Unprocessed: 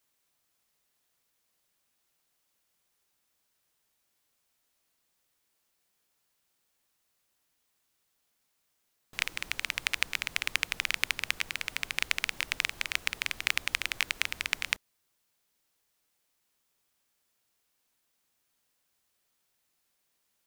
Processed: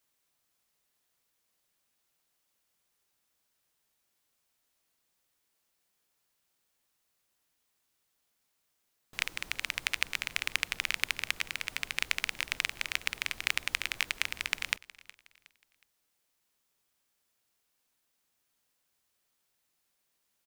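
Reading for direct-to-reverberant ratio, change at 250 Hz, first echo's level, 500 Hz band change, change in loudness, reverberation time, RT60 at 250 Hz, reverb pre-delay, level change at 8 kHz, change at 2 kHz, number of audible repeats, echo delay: no reverb audible, −1.5 dB, −20.5 dB, −1.5 dB, −1.5 dB, no reverb audible, no reverb audible, no reverb audible, −1.5 dB, −1.5 dB, 2, 366 ms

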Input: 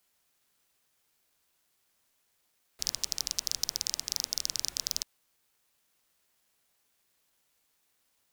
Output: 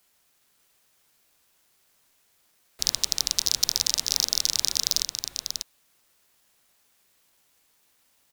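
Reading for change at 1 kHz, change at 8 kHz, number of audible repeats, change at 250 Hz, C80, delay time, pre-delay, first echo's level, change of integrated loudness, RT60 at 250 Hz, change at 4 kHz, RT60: +8.0 dB, +8.0 dB, 1, +8.0 dB, no reverb audible, 593 ms, no reverb audible, −6.5 dB, +8.0 dB, no reverb audible, +9.0 dB, no reverb audible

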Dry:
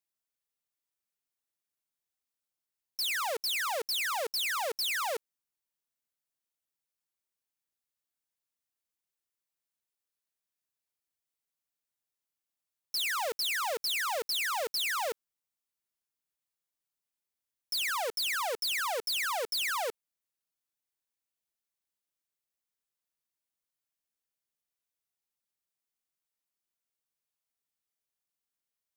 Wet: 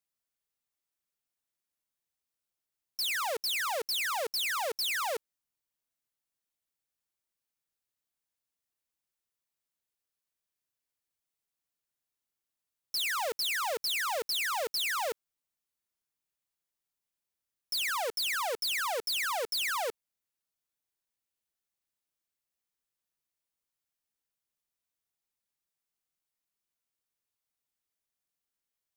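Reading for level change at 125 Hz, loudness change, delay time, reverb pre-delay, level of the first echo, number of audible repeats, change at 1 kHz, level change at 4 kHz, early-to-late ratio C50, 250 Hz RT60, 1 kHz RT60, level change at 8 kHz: can't be measured, 0.0 dB, no echo audible, no reverb audible, no echo audible, no echo audible, 0.0 dB, 0.0 dB, no reverb audible, no reverb audible, no reverb audible, 0.0 dB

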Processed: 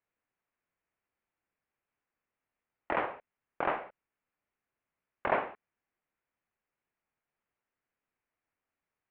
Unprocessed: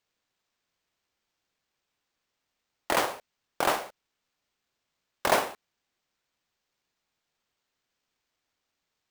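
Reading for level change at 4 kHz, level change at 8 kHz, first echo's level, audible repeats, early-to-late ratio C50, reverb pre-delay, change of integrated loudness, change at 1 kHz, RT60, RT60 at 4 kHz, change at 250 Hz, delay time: −18.5 dB, below −40 dB, no echo audible, no echo audible, no reverb audible, no reverb audible, −6.0 dB, −5.0 dB, no reverb audible, no reverb audible, −5.0 dB, no echo audible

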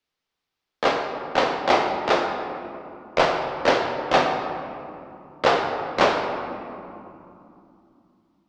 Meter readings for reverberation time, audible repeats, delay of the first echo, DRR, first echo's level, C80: 2.8 s, no echo audible, no echo audible, 2.0 dB, no echo audible, 5.5 dB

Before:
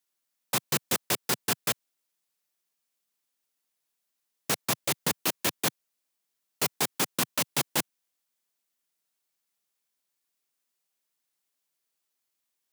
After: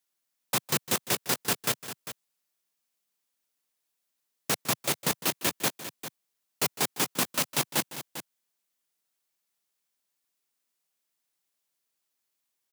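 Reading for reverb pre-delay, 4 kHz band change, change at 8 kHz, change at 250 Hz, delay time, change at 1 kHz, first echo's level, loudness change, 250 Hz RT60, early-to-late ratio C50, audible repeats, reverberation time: no reverb audible, +0.5 dB, +0.5 dB, +0.5 dB, 156 ms, +0.5 dB, −16.5 dB, 0.0 dB, no reverb audible, no reverb audible, 2, no reverb audible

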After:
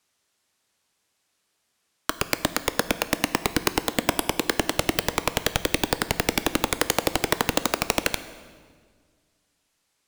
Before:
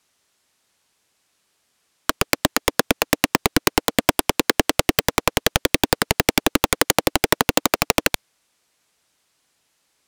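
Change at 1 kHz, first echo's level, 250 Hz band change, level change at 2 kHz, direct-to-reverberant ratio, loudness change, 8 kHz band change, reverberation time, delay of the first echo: −5.0 dB, no echo audible, −5.0 dB, −5.0 dB, 12.0 dB, −5.0 dB, −5.5 dB, 1.7 s, no echo audible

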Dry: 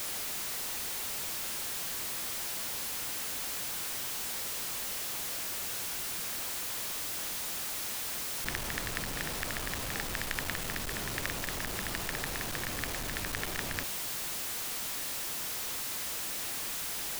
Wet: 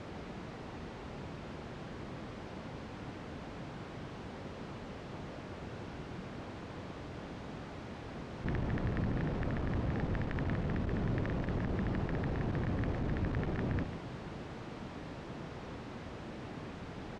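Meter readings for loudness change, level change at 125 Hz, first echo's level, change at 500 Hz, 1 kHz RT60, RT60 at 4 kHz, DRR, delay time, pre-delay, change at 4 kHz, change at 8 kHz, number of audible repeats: −6.0 dB, +9.5 dB, −11.5 dB, +3.0 dB, no reverb audible, no reverb audible, no reverb audible, 144 ms, no reverb audible, −17.0 dB, below −25 dB, 1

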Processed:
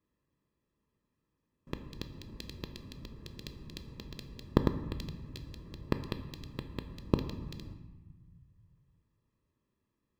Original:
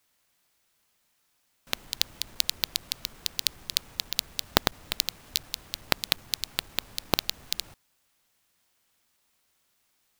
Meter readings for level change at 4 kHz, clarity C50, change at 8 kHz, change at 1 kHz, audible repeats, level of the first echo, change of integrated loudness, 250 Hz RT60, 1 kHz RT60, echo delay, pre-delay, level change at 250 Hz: −20.5 dB, 11.0 dB, −26.0 dB, −9.0 dB, no echo audible, no echo audible, −9.5 dB, 2.4 s, 1.4 s, no echo audible, 3 ms, +5.5 dB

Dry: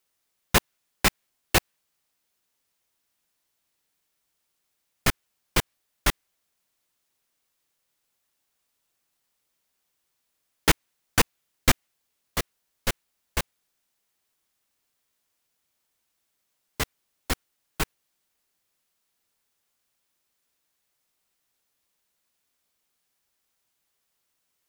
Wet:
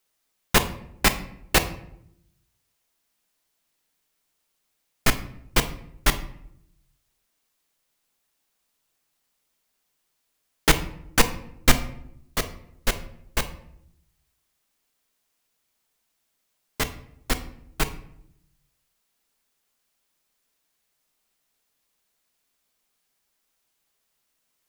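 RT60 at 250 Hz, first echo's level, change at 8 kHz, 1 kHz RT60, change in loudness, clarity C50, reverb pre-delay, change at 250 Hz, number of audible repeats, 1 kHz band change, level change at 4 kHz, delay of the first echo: 1.0 s, no echo audible, +2.0 dB, 0.70 s, +1.5 dB, 13.0 dB, 3 ms, +2.5 dB, no echo audible, +2.0 dB, +2.0 dB, no echo audible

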